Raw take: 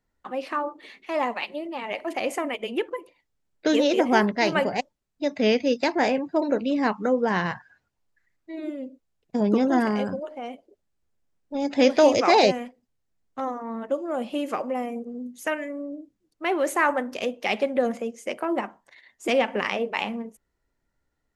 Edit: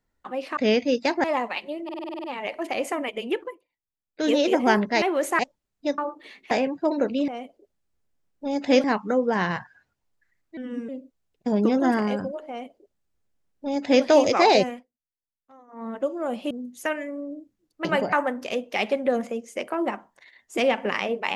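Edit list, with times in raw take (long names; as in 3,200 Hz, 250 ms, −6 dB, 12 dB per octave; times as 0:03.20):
0:00.57–0:01.10: swap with 0:05.35–0:06.02
0:01.70: stutter 0.05 s, 9 plays
0:02.88–0:03.77: duck −17 dB, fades 0.18 s
0:04.48–0:04.76: swap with 0:16.46–0:16.83
0:08.52–0:08.77: play speed 79%
0:10.37–0:11.93: duplicate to 0:06.79
0:12.57–0:13.77: duck −22 dB, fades 0.21 s
0:14.39–0:15.12: remove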